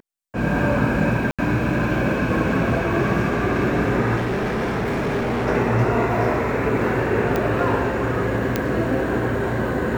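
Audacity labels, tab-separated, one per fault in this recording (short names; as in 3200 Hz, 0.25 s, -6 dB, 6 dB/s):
1.310000	1.390000	gap 76 ms
4.160000	5.470000	clipped -19.5 dBFS
7.360000	7.360000	pop -9 dBFS
8.560000	8.560000	pop -6 dBFS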